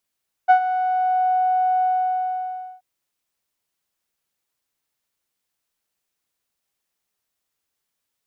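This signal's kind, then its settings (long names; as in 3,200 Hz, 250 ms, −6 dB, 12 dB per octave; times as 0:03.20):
subtractive voice saw F#5 12 dB per octave, low-pass 740 Hz, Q 2.9, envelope 0.5 octaves, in 0.92 s, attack 23 ms, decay 0.09 s, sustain −12.5 dB, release 0.98 s, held 1.35 s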